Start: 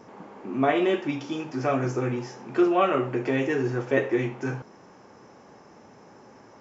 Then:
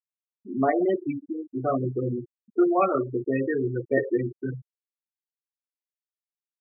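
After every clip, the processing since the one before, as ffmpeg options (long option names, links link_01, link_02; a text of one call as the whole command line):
ffmpeg -i in.wav -af "afftfilt=real='re*gte(hypot(re,im),0.126)':imag='im*gte(hypot(re,im),0.126)':win_size=1024:overlap=0.75" out.wav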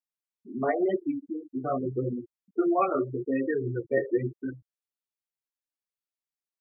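ffmpeg -i in.wav -af "flanger=delay=3.2:depth=9.7:regen=0:speed=0.88:shape=sinusoidal" out.wav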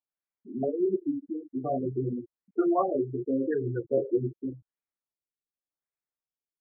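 ffmpeg -i in.wav -af "afftfilt=real='re*lt(b*sr/1024,450*pow(2600/450,0.5+0.5*sin(2*PI*0.88*pts/sr)))':imag='im*lt(b*sr/1024,450*pow(2600/450,0.5+0.5*sin(2*PI*0.88*pts/sr)))':win_size=1024:overlap=0.75" out.wav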